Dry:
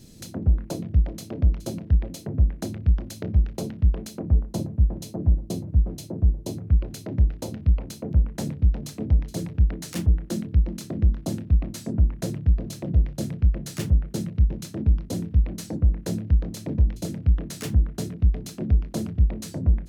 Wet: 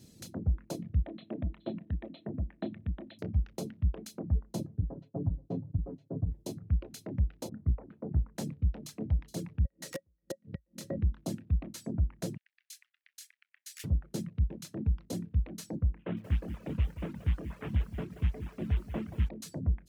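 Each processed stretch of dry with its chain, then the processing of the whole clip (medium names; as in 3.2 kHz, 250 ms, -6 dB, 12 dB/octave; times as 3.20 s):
1.02–3.19 s: Chebyshev low-pass 4 kHz, order 8 + bass shelf 350 Hz -6 dB + small resonant body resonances 220/310/630/1800 Hz, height 8 dB, ringing for 35 ms
4.78–6.32 s: low-pass 1.1 kHz + expander -34 dBFS + comb 7.3 ms, depth 99%
7.49–8.36 s: low-pass 1.6 kHz 24 dB/octave + loudspeaker Doppler distortion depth 0.79 ms
9.65–10.98 s: inverted gate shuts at -19 dBFS, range -33 dB + small resonant body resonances 550/1900 Hz, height 17 dB, ringing for 90 ms
12.37–13.84 s: steep high-pass 1.7 kHz + peaking EQ 3.5 kHz -3 dB 1.5 oct
15.99–19.29 s: CVSD coder 16 kbps + dynamic bell 1.1 kHz, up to +3 dB, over -51 dBFS, Q 0.97 + bit-crushed delay 180 ms, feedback 35%, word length 8-bit, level -8 dB
whole clip: reverb removal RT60 0.92 s; high-pass 63 Hz; trim -6.5 dB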